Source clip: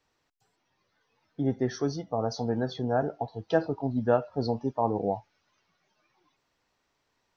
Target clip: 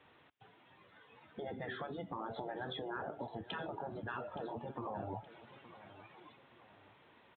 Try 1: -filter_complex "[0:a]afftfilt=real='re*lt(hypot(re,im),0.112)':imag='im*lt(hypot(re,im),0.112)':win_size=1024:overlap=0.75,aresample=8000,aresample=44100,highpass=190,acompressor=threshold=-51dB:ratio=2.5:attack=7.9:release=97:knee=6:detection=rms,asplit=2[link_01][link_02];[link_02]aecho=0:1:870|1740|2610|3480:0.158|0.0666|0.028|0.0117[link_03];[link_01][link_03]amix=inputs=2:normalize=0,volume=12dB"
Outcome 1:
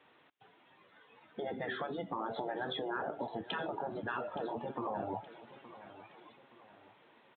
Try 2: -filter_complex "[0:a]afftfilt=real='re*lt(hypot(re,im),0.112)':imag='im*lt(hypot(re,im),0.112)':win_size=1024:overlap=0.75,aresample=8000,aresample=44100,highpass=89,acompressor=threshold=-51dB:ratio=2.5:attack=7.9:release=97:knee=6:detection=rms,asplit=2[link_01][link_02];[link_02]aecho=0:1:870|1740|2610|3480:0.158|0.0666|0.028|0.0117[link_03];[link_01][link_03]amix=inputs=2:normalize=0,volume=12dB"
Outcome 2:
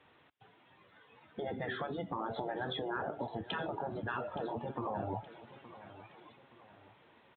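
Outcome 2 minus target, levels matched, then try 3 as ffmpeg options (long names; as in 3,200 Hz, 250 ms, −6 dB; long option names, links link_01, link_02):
downward compressor: peak gain reduction −4.5 dB
-filter_complex "[0:a]afftfilt=real='re*lt(hypot(re,im),0.112)':imag='im*lt(hypot(re,im),0.112)':win_size=1024:overlap=0.75,aresample=8000,aresample=44100,highpass=89,acompressor=threshold=-58.5dB:ratio=2.5:attack=7.9:release=97:knee=6:detection=rms,asplit=2[link_01][link_02];[link_02]aecho=0:1:870|1740|2610|3480:0.158|0.0666|0.028|0.0117[link_03];[link_01][link_03]amix=inputs=2:normalize=0,volume=12dB"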